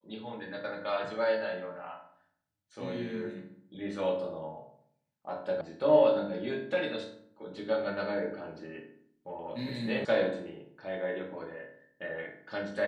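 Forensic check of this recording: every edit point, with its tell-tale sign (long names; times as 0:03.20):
0:05.61: cut off before it has died away
0:10.05: cut off before it has died away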